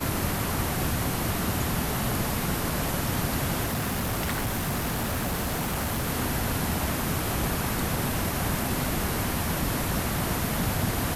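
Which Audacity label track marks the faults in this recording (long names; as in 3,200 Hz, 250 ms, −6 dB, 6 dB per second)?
3.650000	6.080000	clipping −24 dBFS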